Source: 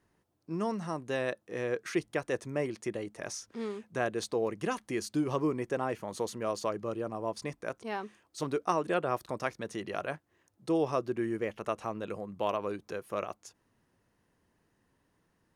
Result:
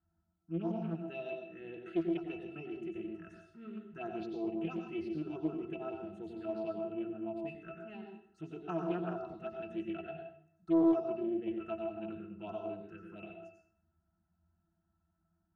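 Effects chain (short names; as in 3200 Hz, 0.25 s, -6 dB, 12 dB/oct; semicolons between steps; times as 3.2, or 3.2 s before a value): graphic EQ 125/500/4000 Hz -11/-8/+4 dB; envelope phaser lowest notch 430 Hz, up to 3800 Hz, full sweep at -28 dBFS; octave resonator E, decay 0.13 s; reverb RT60 0.55 s, pre-delay 86 ms, DRR 2 dB; Doppler distortion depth 0.29 ms; gain +8.5 dB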